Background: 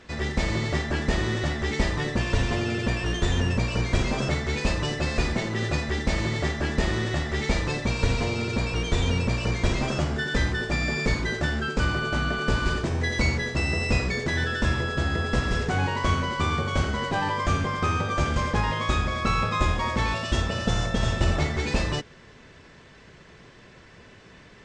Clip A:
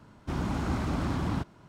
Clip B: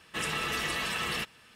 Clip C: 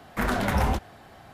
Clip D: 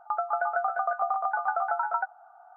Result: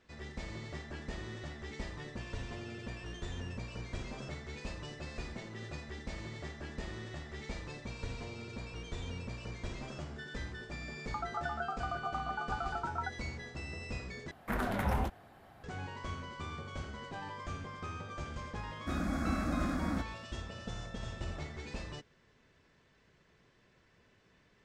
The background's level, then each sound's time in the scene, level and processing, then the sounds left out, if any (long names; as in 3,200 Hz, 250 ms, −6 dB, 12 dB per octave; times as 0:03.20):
background −17.5 dB
0:11.04: mix in D −7 dB + high-pass filter 1,000 Hz 6 dB per octave
0:14.31: overwrite with C −8 dB + parametric band 5,700 Hz −6 dB 1.8 octaves
0:18.59: mix in A −1 dB + phaser with its sweep stopped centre 620 Hz, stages 8
not used: B